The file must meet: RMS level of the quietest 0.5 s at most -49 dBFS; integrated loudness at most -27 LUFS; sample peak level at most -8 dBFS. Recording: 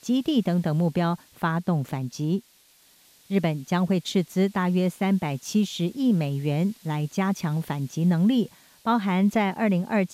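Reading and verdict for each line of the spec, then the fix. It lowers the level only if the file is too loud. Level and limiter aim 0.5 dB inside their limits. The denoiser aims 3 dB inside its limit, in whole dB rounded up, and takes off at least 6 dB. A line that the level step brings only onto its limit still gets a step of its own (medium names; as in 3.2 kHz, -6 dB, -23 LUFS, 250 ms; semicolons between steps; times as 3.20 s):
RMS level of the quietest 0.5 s -58 dBFS: pass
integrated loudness -25.0 LUFS: fail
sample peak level -10.0 dBFS: pass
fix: trim -2.5 dB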